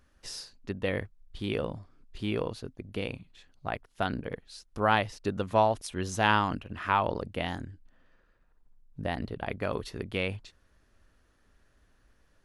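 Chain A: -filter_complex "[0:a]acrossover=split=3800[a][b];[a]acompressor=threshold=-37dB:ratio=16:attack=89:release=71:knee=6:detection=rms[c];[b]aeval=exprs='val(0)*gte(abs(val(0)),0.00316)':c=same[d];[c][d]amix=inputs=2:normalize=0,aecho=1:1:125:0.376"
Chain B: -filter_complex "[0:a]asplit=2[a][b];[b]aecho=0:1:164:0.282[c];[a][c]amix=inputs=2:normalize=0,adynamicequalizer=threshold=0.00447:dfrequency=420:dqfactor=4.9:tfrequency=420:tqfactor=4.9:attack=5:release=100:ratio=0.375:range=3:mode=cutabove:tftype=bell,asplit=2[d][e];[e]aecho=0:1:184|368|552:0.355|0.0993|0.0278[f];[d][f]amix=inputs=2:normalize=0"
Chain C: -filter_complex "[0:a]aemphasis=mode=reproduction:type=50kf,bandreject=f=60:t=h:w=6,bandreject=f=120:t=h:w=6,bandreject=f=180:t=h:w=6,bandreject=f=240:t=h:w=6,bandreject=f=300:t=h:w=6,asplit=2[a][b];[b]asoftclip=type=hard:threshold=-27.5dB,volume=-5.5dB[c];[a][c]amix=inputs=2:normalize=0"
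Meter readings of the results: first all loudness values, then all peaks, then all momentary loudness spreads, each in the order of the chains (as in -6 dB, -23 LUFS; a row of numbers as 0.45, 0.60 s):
-38.5, -31.0, -30.0 LUFS; -17.5, -9.0, -10.0 dBFS; 9, 16, 17 LU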